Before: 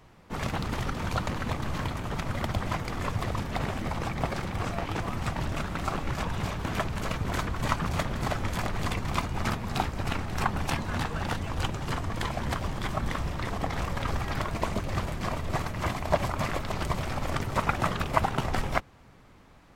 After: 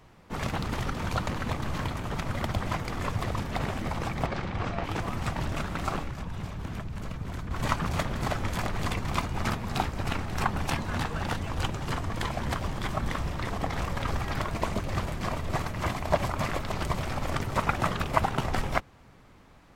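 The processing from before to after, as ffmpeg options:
-filter_complex "[0:a]asettb=1/sr,asplit=3[s0][s1][s2];[s0]atrim=end=4.264[s3];[s1]atrim=start=4.26:end=4.84,asetpts=PTS-STARTPTS,afade=t=in:d=0.004:c=qsin,afade=t=out:st=0.576:d=0.004:c=qsin,lowpass=4600[s4];[s2]atrim=start=4.836[s5];[s3][s4]acrossfade=d=0.004:c1=hsin:c2=qsin[s6];[s6][s5]acrossfade=d=0.004:c1=qsin:c2=hsin,asettb=1/sr,asplit=3[s7][s8][s9];[s7]atrim=end=6.034[s10];[s8]atrim=start=6.03:end=7.51,asetpts=PTS-STARTPTS,afade=t=in:d=0.004:c=qsin,afade=t=out:st=1.476:d=0.004:c=qsin,acrossover=split=250|1800[s11][s12][s13];[s11]acompressor=threshold=0.0251:ratio=4[s14];[s12]acompressor=threshold=0.00562:ratio=4[s15];[s13]acompressor=threshold=0.00251:ratio=4[s16];[s14][s15][s16]amix=inputs=3:normalize=0[s17];[s9]atrim=start=7.506[s18];[s10][s17]acrossfade=d=0.004:c1=hsin:c2=qsin[s19];[s19][s18]acrossfade=d=0.004:c1=qsin:c2=hsin"

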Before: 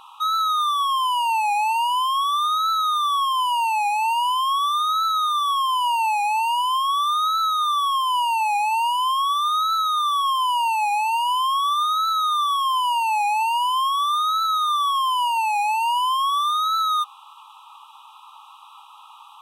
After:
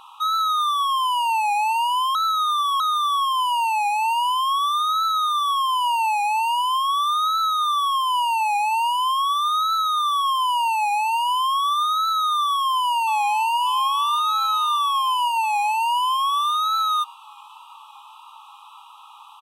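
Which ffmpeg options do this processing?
-filter_complex "[0:a]asplit=2[s0][s1];[s1]afade=t=in:st=12.48:d=0.01,afade=t=out:st=13.6:d=0.01,aecho=0:1:590|1180|1770|2360|2950|3540|4130|4720|5310|5900|6490:0.199526|0.149645|0.112234|0.0841751|0.0631313|0.0473485|0.0355114|0.0266335|0.0199752|0.0149814|0.011236[s2];[s0][s2]amix=inputs=2:normalize=0,asplit=3[s3][s4][s5];[s3]atrim=end=2.152[s6];[s4]atrim=start=2.148:end=2.802,asetpts=PTS-STARTPTS,areverse[s7];[s5]atrim=start=2.798[s8];[s6][s7]acrossfade=d=0.004:c1=hsin:c2=hsin[s9];[s9][s8]acrossfade=d=0.004:c1=hsin:c2=hsin"

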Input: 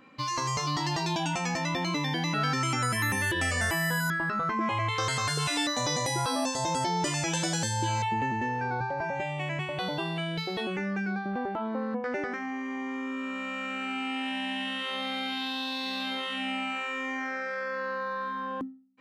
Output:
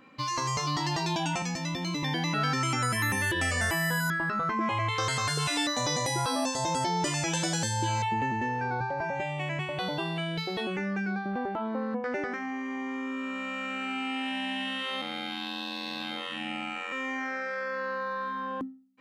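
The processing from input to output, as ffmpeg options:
-filter_complex "[0:a]asettb=1/sr,asplit=3[s0][s1][s2];[s0]atrim=end=1.424[s3];[s1]atrim=start=1.42:end=2.03,asetpts=PTS-STARTPTS,afade=t=in:d=0.004:c=qsin,afade=t=out:st=0.606:d=0.004:c=qsin,acrossover=split=340|3000[s4][s5][s6];[s5]acompressor=threshold=0.00794:ratio=2.5:attack=3.2:release=140:knee=2.83:detection=peak[s7];[s4][s7][s6]amix=inputs=3:normalize=0[s8];[s2]atrim=start=2.026[s9];[s3][s8]acrossfade=d=0.004:c1=hsin:c2=qsin[s10];[s10][s9]acrossfade=d=0.004:c1=qsin:c2=hsin,asettb=1/sr,asplit=3[s11][s12][s13];[s11]atrim=end=15.014[s14];[s12]atrim=start=15.01:end=16.92,asetpts=PTS-STARTPTS,afade=t=in:d=0.004:c=qsin,afade=t=out:st=1.906:d=0.004:c=qsin,aeval=exprs='val(0)*sin(2*PI*44*n/s)':c=same[s15];[s13]atrim=start=16.916[s16];[s14][s15]acrossfade=d=0.004:c1=hsin:c2=qsin[s17];[s17][s16]acrossfade=d=0.004:c1=qsin:c2=hsin"

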